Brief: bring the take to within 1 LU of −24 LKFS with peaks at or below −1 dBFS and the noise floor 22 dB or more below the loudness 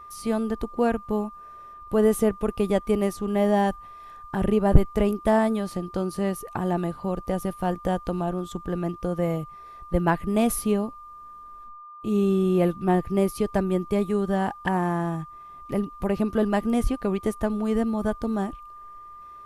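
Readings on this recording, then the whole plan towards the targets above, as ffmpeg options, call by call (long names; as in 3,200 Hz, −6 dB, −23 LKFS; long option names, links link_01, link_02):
interfering tone 1,200 Hz; level of the tone −41 dBFS; integrated loudness −25.5 LKFS; sample peak −1.5 dBFS; target loudness −24.0 LKFS
→ -af "bandreject=frequency=1200:width=30"
-af "volume=1.5dB,alimiter=limit=-1dB:level=0:latency=1"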